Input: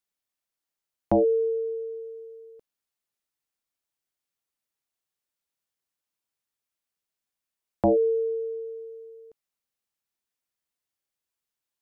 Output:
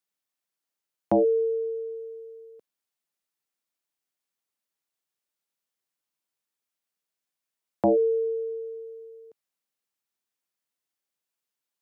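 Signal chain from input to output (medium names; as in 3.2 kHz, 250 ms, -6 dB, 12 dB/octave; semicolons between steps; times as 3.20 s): high-pass 140 Hz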